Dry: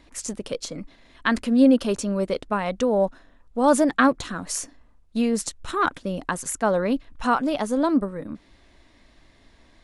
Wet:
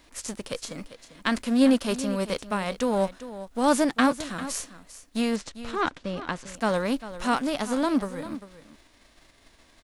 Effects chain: spectral whitening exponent 0.6; 5.36–6.55 air absorption 110 m; on a send: echo 0.397 s -14 dB; on the sum: gain -3.5 dB

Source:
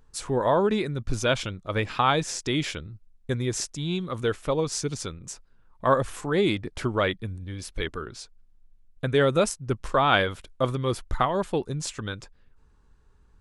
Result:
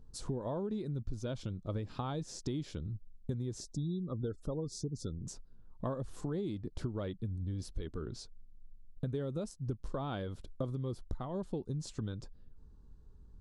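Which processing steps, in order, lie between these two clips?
EQ curve 230 Hz 0 dB, 2300 Hz -19 dB, 4300 Hz -4 dB; 3.61–5.27 spectral gate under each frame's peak -30 dB strong; compressor 10:1, threshold -37 dBFS, peak gain reduction 17.5 dB; high shelf 4600 Hz -12 dB; gain +3.5 dB

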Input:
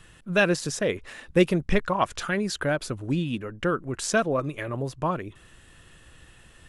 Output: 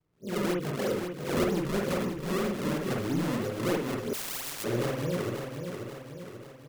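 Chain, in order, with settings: spectral swells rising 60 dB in 0.37 s; HPF 170 Hz 6 dB/oct; gate -42 dBFS, range -21 dB; steep low-pass 560 Hz 96 dB/oct; in parallel at 0 dB: compressor, threshold -34 dBFS, peak gain reduction 17.5 dB; on the sum: flange 0.94 Hz, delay 6.7 ms, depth 2.5 ms, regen -43%; decimation with a swept rate 33×, swing 160% 3.1 Hz; soft clip -25.5 dBFS, distortion -11 dB; feedback echo 0.537 s, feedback 52%, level -6.5 dB; on a send at -2 dB: reverb, pre-delay 50 ms; 4.13–4.64 on the sum: spectral compressor 10:1

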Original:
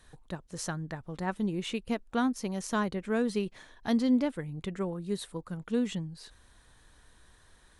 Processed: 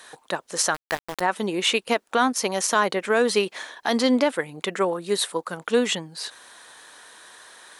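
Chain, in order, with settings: HPF 530 Hz 12 dB/oct; 0.74–1.21 sample gate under -42.5 dBFS; maximiser +25 dB; gain -8 dB

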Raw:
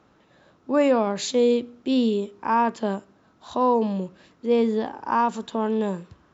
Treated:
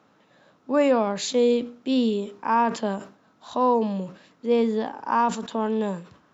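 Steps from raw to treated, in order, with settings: HPF 150 Hz 12 dB/oct; bell 360 Hz -8.5 dB 0.2 oct; sustainer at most 140 dB/s

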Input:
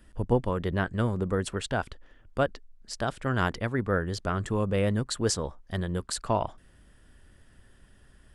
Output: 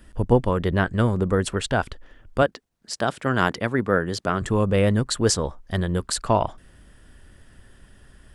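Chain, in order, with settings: 2.42–4.42 HPF 140 Hz 12 dB/oct; gain +6.5 dB

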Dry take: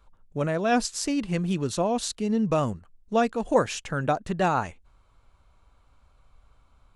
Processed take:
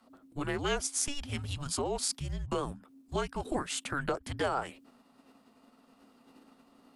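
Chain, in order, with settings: frequency shift -280 Hz; compressor 6:1, threshold -25 dBFS, peak gain reduction 10 dB; tone controls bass -8 dB, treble +1 dB; formant shift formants +4 st

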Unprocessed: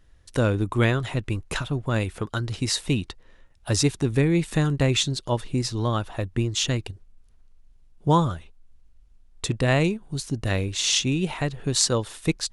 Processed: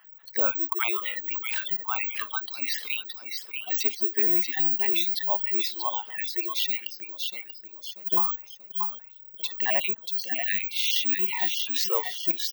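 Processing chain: random spectral dropouts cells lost 23%; dynamic EQ 7600 Hz, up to +5 dB, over -41 dBFS, Q 0.75; on a send: feedback echo 0.636 s, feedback 30%, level -8 dB; on the sum: spectral noise reduction 22 dB; air absorption 270 m; 1.12–1.69 overloaded stage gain 34 dB; careless resampling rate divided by 2×, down none, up zero stuff; HPF 610 Hz 12 dB/oct; fast leveller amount 50%; gain -2 dB

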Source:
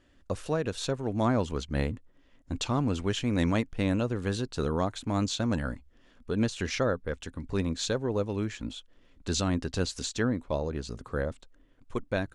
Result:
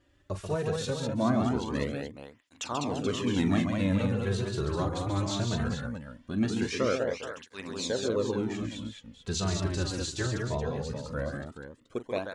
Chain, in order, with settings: on a send: tapped delay 41/42/136/200/429 ms -11/-17.5/-6.5/-4.5/-9.5 dB; on the sum: tape flanging out of phase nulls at 0.2 Hz, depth 4.7 ms

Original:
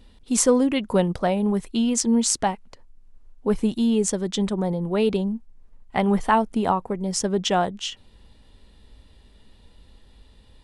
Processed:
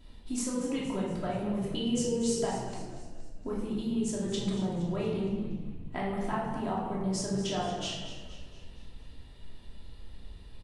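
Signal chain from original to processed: notches 50/100/150/200 Hz; compressor 6:1, threshold -31 dBFS, peak gain reduction 17 dB; 1.58–2.45 small resonant body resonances 470/3000 Hz, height 13 dB; frequency-shifting echo 0.234 s, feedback 51%, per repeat -52 Hz, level -12.5 dB; shoebox room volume 600 m³, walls mixed, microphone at 2.9 m; gain -6.5 dB

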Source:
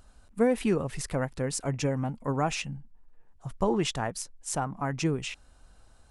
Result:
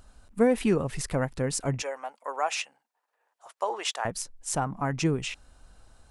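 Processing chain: 1.82–4.05 HPF 560 Hz 24 dB/oct; gain +2 dB

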